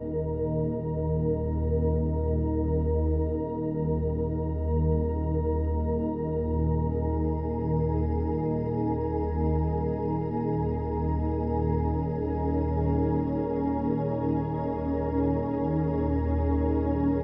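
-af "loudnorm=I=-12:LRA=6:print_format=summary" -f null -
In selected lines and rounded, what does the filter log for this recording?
Input Integrated:    -27.9 LUFS
Input True Peak:     -13.9 dBTP
Input LRA:             0.9 LU
Input Threshold:     -37.9 LUFS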